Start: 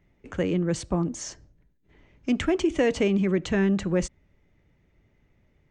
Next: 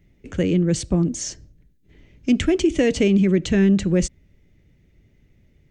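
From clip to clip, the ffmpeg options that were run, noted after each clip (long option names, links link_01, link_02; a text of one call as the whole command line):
ffmpeg -i in.wav -af "equalizer=frequency=1000:width_type=o:width=1.6:gain=-13.5,volume=8dB" out.wav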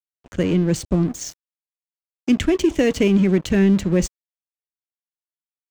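ffmpeg -i in.wav -af "aeval=exprs='sgn(val(0))*max(abs(val(0))-0.0178,0)':channel_layout=same,volume=1.5dB" out.wav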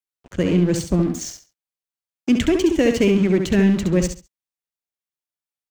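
ffmpeg -i in.wav -af "aecho=1:1:68|136|204:0.473|0.109|0.025" out.wav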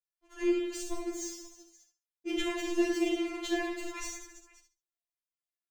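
ffmpeg -i in.wav -af "aecho=1:1:40|100|190|325|527.5:0.631|0.398|0.251|0.158|0.1,aeval=exprs='val(0)*sin(2*PI*73*n/s)':channel_layout=same,afftfilt=real='re*4*eq(mod(b,16),0)':imag='im*4*eq(mod(b,16),0)':win_size=2048:overlap=0.75,volume=-5.5dB" out.wav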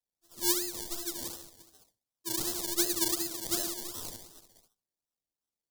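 ffmpeg -i in.wav -af "acrusher=samples=27:mix=1:aa=0.000001:lfo=1:lforange=16.2:lforate=2.7,aexciter=amount=8.1:drive=4.6:freq=3600,volume=-7dB" out.wav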